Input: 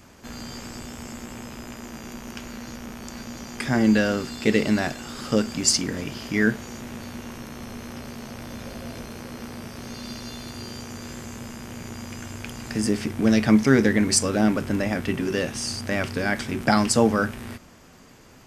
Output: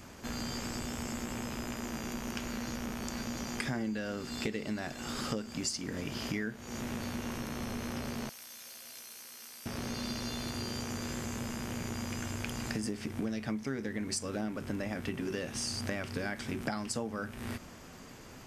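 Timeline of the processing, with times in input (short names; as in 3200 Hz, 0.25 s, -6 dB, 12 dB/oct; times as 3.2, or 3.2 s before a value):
8.29–9.66 differentiator
whole clip: compressor 12:1, threshold -32 dBFS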